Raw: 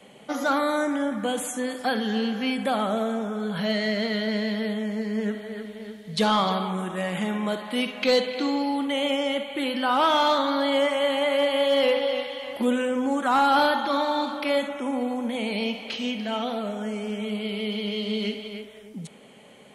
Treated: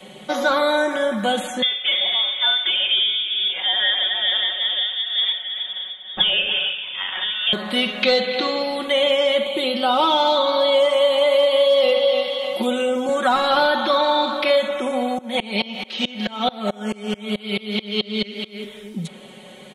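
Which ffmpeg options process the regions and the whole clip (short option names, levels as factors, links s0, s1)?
-filter_complex "[0:a]asettb=1/sr,asplit=3[s0][s1][s2];[s0]atrim=end=1.624[s3];[s1]atrim=start=1.62:end=7.53,asetpts=PTS-STARTPTS,afade=t=in:d=0.004:c=qsin,afade=t=out:st=5.906:d=0.004:c=qsin,highpass=f=280:w=0.5412,highpass=f=280:w=1.3066,tremolo=f=2.2:d=0.38,lowpass=f=3200:t=q:w=0.5098,lowpass=f=3200:t=q:w=0.6013,lowpass=f=3200:t=q:w=0.9,lowpass=f=3200:t=q:w=2.563,afreqshift=-3800[s4];[s2]atrim=start=7.526[s5];[s3][s4]acrossfade=d=0.004:c1=hsin:c2=qsin[s6];[s6][s5]acrossfade=d=0.004:c1=qsin:c2=hsin,asettb=1/sr,asplit=3[s7][s8][s9];[s7]atrim=end=9.464[s10];[s8]atrim=start=9.46:end=13.09,asetpts=PTS-STARTPTS,afade=t=in:d=0.004:c=qsin,afade=t=out:st=3.626:d=0.004:c=qsin,highpass=120,equalizer=f=1700:w=2.7:g=-13,acompressor=mode=upward:threshold=0.0355:ratio=2.5:attack=3.2:release=140:knee=2.83:detection=peak[s11];[s9]atrim=start=13.086[s12];[s10][s11]acrossfade=d=0.004:c1=hsin:c2=qsin[s13];[s13][s12]acrossfade=d=0.004:c1=qsin:c2=hsin,asettb=1/sr,asplit=3[s14][s15][s16];[s14]atrim=end=15.184[s17];[s15]atrim=start=15.18:end=18.64,asetpts=PTS-STARTPTS,afade=t=in:d=0.004:c=qsin,afade=t=out:st=3.456:d=0.004:c=qsin,acontrast=49,highpass=200,aeval=exprs='val(0)*pow(10,-27*if(lt(mod(-4.6*n/s,1),2*abs(-4.6)/1000),1-mod(-4.6*n/s,1)/(2*abs(-4.6)/1000),(mod(-4.6*n/s,1)-2*abs(-4.6)/1000)/(1-2*abs(-4.6)/1000))/20)':c=same[s18];[s16]atrim=start=18.636[s19];[s17][s18]acrossfade=d=0.004:c1=hsin:c2=qsin[s20];[s20][s19]acrossfade=d=0.004:c1=qsin:c2=hsin,equalizer=f=3700:t=o:w=0.27:g=9,aecho=1:1:5.4:0.76,acrossover=split=470|4600[s21][s22][s23];[s21]acompressor=threshold=0.0316:ratio=4[s24];[s22]acompressor=threshold=0.0794:ratio=4[s25];[s23]acompressor=threshold=0.00398:ratio=4[s26];[s24][s25][s26]amix=inputs=3:normalize=0,volume=2"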